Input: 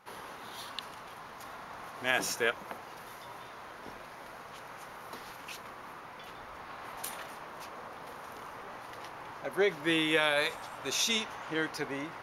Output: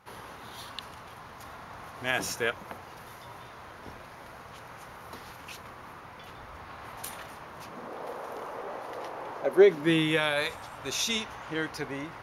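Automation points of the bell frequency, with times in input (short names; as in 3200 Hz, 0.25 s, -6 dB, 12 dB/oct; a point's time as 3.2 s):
bell +12 dB 1.6 oct
7.54 s 80 Hz
7.99 s 510 Hz
9.42 s 510 Hz
10.41 s 71 Hz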